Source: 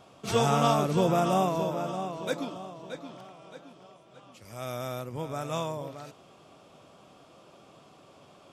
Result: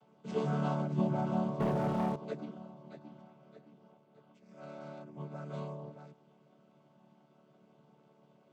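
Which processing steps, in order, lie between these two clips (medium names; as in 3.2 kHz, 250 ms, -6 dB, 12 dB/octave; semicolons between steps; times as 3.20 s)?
vocoder on a held chord major triad, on D3; 1.60–2.16 s: waveshaping leveller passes 3; trim -7 dB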